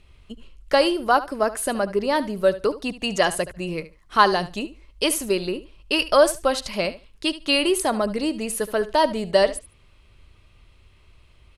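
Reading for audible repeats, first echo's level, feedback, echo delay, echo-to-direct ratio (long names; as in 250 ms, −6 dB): 2, −15.5 dB, 16%, 73 ms, −15.5 dB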